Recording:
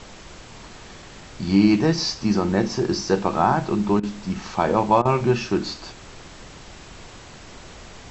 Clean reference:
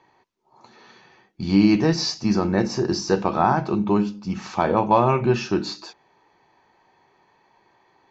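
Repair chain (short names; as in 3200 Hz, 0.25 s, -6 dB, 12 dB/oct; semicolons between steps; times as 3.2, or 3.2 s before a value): interpolate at 4/5.02, 31 ms; noise print and reduce 19 dB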